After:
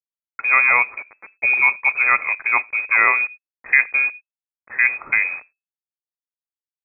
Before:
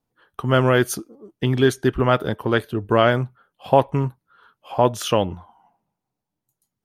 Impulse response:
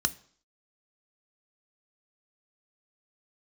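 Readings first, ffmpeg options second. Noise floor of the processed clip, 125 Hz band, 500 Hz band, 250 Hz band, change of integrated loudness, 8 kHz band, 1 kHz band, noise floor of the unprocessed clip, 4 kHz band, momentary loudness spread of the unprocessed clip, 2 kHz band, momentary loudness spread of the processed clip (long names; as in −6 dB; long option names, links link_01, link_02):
below −85 dBFS, below −30 dB, −19.0 dB, below −25 dB, +4.0 dB, below −40 dB, −1.5 dB, −83 dBFS, below −40 dB, 13 LU, +14.0 dB, 10 LU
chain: -filter_complex "[0:a]acrusher=bits=5:mix=0:aa=0.000001,asplit=2[link_01][link_02];[1:a]atrim=start_sample=2205,atrim=end_sample=3969,asetrate=35721,aresample=44100[link_03];[link_02][link_03]afir=irnorm=-1:irlink=0,volume=-17.5dB[link_04];[link_01][link_04]amix=inputs=2:normalize=0,lowpass=frequency=2200:width_type=q:width=0.5098,lowpass=frequency=2200:width_type=q:width=0.6013,lowpass=frequency=2200:width_type=q:width=0.9,lowpass=frequency=2200:width_type=q:width=2.563,afreqshift=-2600,volume=2dB"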